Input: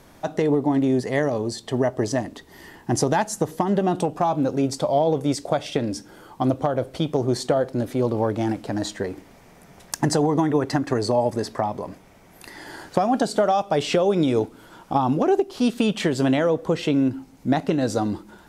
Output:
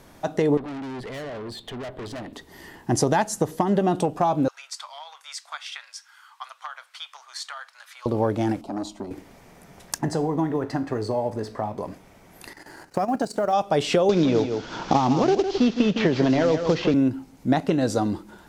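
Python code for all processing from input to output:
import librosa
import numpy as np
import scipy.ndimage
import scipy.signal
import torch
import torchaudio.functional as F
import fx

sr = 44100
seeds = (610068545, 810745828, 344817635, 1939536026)

y = fx.chain(x, sr, fx.high_shelf_res(hz=4600.0, db=-8.0, q=3.0),
    fx.tube_stage(drive_db=32.0, bias=0.45), at=(0.57, 2.33))
y = fx.chain(y, sr, fx.steep_highpass(hz=1100.0, slope=36),
    fx.high_shelf(hz=9000.0, db=-11.5), at=(4.48, 8.06))
y = fx.chain(y, sr, fx.high_shelf(hz=3100.0, db=-9.0),
    fx.fixed_phaser(hz=470.0, stages=6),
    fx.transformer_sat(knee_hz=550.0), at=(8.61, 9.11))
y = fx.chain(y, sr, fx.law_mismatch(coded='mu'),
    fx.high_shelf(hz=3100.0, db=-8.5),
    fx.comb_fb(f0_hz=54.0, decay_s=0.39, harmonics='all', damping=0.0, mix_pct=60), at=(9.98, 11.78))
y = fx.chain(y, sr, fx.law_mismatch(coded='A'),
    fx.peak_eq(hz=3400.0, db=-12.0, octaves=0.27),
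    fx.level_steps(step_db=11), at=(12.53, 13.53))
y = fx.chain(y, sr, fx.cvsd(bps=32000),
    fx.echo_single(ms=158, db=-9.5),
    fx.band_squash(depth_pct=100), at=(14.09, 16.94))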